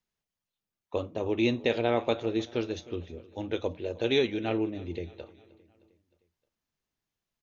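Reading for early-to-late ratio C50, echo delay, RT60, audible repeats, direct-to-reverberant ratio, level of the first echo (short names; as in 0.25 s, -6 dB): none, 0.309 s, none, 3, none, -21.0 dB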